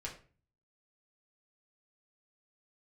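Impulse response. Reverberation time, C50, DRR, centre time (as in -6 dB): 0.40 s, 9.5 dB, -3.5 dB, 19 ms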